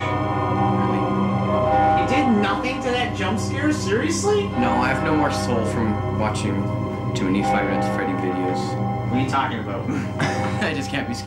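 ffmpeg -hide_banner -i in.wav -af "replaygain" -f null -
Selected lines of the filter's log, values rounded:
track_gain = +3.1 dB
track_peak = 0.245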